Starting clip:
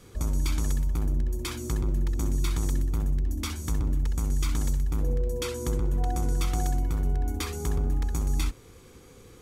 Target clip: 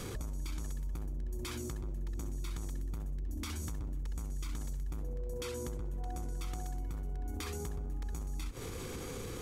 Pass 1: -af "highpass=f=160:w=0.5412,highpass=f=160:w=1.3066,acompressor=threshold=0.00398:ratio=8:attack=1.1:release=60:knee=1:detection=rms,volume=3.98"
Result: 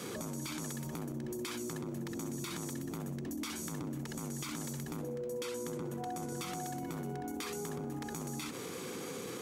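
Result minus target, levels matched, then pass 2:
125 Hz band -3.5 dB
-af "acompressor=threshold=0.00398:ratio=8:attack=1.1:release=60:knee=1:detection=rms,volume=3.98"

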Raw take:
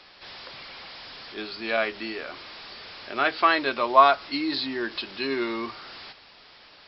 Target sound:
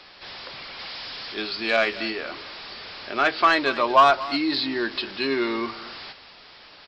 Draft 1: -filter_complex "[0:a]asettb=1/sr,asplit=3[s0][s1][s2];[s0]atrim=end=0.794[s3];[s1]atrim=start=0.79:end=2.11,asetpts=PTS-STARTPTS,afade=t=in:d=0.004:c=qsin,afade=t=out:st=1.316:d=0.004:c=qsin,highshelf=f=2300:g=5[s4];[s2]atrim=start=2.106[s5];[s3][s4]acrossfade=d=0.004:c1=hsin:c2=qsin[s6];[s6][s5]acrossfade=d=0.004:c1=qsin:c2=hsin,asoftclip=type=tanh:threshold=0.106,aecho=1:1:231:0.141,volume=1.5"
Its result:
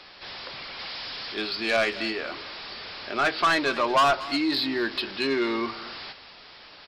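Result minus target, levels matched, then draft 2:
saturation: distortion +8 dB
-filter_complex "[0:a]asettb=1/sr,asplit=3[s0][s1][s2];[s0]atrim=end=0.794[s3];[s1]atrim=start=0.79:end=2.11,asetpts=PTS-STARTPTS,afade=t=in:d=0.004:c=qsin,afade=t=out:st=1.316:d=0.004:c=qsin,highshelf=f=2300:g=5[s4];[s2]atrim=start=2.106[s5];[s3][s4]acrossfade=d=0.004:c1=hsin:c2=qsin[s6];[s6][s5]acrossfade=d=0.004:c1=qsin:c2=hsin,asoftclip=type=tanh:threshold=0.282,aecho=1:1:231:0.141,volume=1.5"

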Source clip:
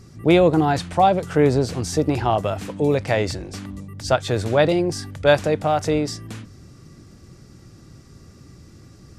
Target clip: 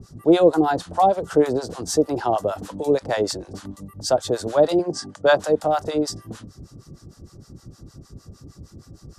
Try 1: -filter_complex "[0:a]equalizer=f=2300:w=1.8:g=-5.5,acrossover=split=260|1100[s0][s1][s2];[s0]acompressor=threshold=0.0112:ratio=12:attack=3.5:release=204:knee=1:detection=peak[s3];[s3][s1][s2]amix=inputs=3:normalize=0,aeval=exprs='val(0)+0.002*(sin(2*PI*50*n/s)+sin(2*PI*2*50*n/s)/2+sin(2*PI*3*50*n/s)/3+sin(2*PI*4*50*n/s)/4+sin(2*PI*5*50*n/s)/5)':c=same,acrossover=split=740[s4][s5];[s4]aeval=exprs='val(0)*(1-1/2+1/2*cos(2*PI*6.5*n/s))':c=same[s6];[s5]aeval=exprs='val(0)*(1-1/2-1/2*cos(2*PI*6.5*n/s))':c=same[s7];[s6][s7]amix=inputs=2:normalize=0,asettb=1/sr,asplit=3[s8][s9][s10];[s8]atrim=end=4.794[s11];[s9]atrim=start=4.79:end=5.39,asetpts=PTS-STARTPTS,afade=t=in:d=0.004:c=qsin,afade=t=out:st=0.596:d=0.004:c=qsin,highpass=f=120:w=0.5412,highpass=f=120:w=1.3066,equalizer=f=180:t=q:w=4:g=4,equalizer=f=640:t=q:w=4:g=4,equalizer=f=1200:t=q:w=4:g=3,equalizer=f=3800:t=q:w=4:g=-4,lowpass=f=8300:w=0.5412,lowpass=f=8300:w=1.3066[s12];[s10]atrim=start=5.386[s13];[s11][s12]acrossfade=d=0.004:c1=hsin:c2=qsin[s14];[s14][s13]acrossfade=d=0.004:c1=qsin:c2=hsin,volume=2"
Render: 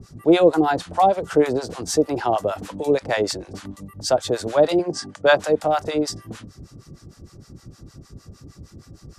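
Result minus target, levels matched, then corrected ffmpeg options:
2 kHz band +3.0 dB
-filter_complex "[0:a]equalizer=f=2300:w=1.8:g=-13.5,acrossover=split=260|1100[s0][s1][s2];[s0]acompressor=threshold=0.0112:ratio=12:attack=3.5:release=204:knee=1:detection=peak[s3];[s3][s1][s2]amix=inputs=3:normalize=0,aeval=exprs='val(0)+0.002*(sin(2*PI*50*n/s)+sin(2*PI*2*50*n/s)/2+sin(2*PI*3*50*n/s)/3+sin(2*PI*4*50*n/s)/4+sin(2*PI*5*50*n/s)/5)':c=same,acrossover=split=740[s4][s5];[s4]aeval=exprs='val(0)*(1-1/2+1/2*cos(2*PI*6.5*n/s))':c=same[s6];[s5]aeval=exprs='val(0)*(1-1/2-1/2*cos(2*PI*6.5*n/s))':c=same[s7];[s6][s7]amix=inputs=2:normalize=0,asettb=1/sr,asplit=3[s8][s9][s10];[s8]atrim=end=4.794[s11];[s9]atrim=start=4.79:end=5.39,asetpts=PTS-STARTPTS,afade=t=in:d=0.004:c=qsin,afade=t=out:st=0.596:d=0.004:c=qsin,highpass=f=120:w=0.5412,highpass=f=120:w=1.3066,equalizer=f=180:t=q:w=4:g=4,equalizer=f=640:t=q:w=4:g=4,equalizer=f=1200:t=q:w=4:g=3,equalizer=f=3800:t=q:w=4:g=-4,lowpass=f=8300:w=0.5412,lowpass=f=8300:w=1.3066[s12];[s10]atrim=start=5.386[s13];[s11][s12]acrossfade=d=0.004:c1=hsin:c2=qsin[s14];[s14][s13]acrossfade=d=0.004:c1=qsin:c2=hsin,volume=2"

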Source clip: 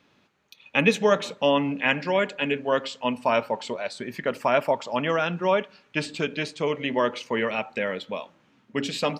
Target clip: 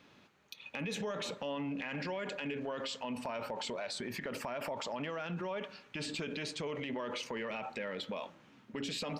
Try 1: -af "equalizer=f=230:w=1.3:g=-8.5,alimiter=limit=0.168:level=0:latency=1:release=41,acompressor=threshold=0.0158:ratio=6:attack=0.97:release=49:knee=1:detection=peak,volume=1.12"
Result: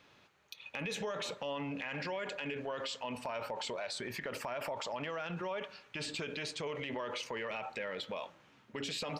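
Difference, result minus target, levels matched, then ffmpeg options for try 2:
250 Hz band -3.5 dB
-af "alimiter=limit=0.168:level=0:latency=1:release=41,acompressor=threshold=0.0158:ratio=6:attack=0.97:release=49:knee=1:detection=peak,volume=1.12"

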